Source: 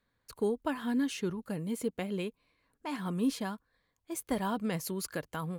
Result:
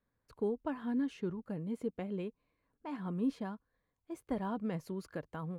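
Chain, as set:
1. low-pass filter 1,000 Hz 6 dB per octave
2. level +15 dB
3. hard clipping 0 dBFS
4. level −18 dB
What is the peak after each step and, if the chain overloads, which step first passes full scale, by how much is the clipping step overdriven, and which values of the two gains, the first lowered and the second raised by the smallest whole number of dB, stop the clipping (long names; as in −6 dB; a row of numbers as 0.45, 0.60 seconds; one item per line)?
−20.5, −5.5, −5.5, −23.5 dBFS
no step passes full scale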